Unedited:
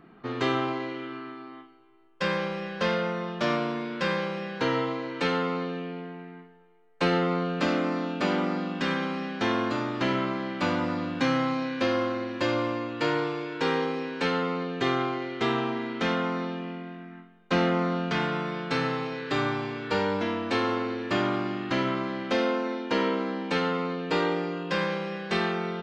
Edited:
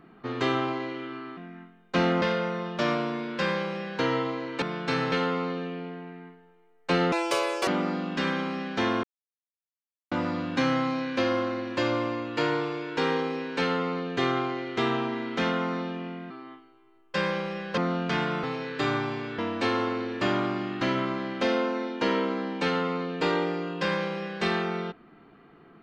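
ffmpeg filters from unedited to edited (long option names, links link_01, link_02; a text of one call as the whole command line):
ffmpeg -i in.wav -filter_complex "[0:a]asplit=13[link_01][link_02][link_03][link_04][link_05][link_06][link_07][link_08][link_09][link_10][link_11][link_12][link_13];[link_01]atrim=end=1.372[link_14];[link_02]atrim=start=16.938:end=17.792[link_15];[link_03]atrim=start=2.838:end=5.242[link_16];[link_04]atrim=start=18.448:end=18.952[link_17];[link_05]atrim=start=5.238:end=7.244[link_18];[link_06]atrim=start=7.24:end=8.31,asetpts=PTS-STARTPTS,asetrate=85113,aresample=44100,atrim=end_sample=24449,asetpts=PTS-STARTPTS[link_19];[link_07]atrim=start=8.306:end=9.67,asetpts=PTS-STARTPTS,afade=type=out:start_time=1.36:duration=0.004:curve=hsin[link_20];[link_08]atrim=start=9.67:end=10.75,asetpts=PTS-STARTPTS,volume=0[link_21];[link_09]atrim=start=10.75:end=16.942,asetpts=PTS-STARTPTS,afade=type=in:duration=0.004:curve=hsin[link_22];[link_10]atrim=start=1.368:end=2.842[link_23];[link_11]atrim=start=17.788:end=18.452[link_24];[link_12]atrim=start=18.948:end=19.902[link_25];[link_13]atrim=start=20.278[link_26];[link_14][link_15]acrossfade=duration=0.004:curve1=hsin:curve2=hsin[link_27];[link_27][link_16]acrossfade=duration=0.004:curve1=hsin:curve2=hsin[link_28];[link_28][link_17]acrossfade=duration=0.004:curve1=hsin:curve2=hsin[link_29];[link_29][link_18]acrossfade=duration=0.004:curve1=hsin:curve2=hsin[link_30];[link_30][link_19]acrossfade=duration=0.004:curve1=hsin:curve2=hsin[link_31];[link_20][link_21][link_22]concat=n=3:v=0:a=1[link_32];[link_31][link_32]acrossfade=duration=0.004:curve1=hsin:curve2=hsin[link_33];[link_33][link_23]acrossfade=duration=0.004:curve1=hsin:curve2=hsin[link_34];[link_34][link_24]acrossfade=duration=0.004:curve1=hsin:curve2=hsin[link_35];[link_35][link_25]acrossfade=duration=0.004:curve1=hsin:curve2=hsin[link_36];[link_36][link_26]acrossfade=duration=0.004:curve1=hsin:curve2=hsin" out.wav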